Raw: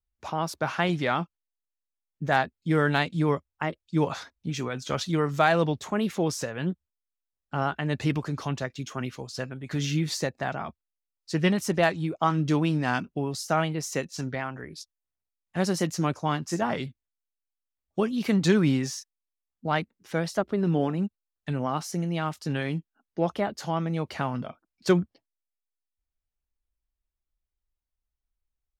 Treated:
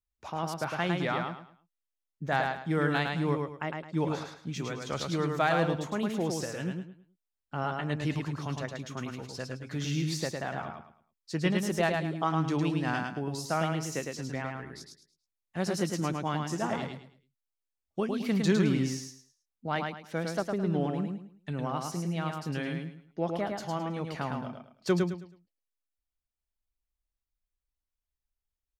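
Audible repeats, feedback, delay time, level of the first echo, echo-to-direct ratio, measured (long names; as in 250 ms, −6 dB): 3, 29%, 107 ms, −4.0 dB, −3.5 dB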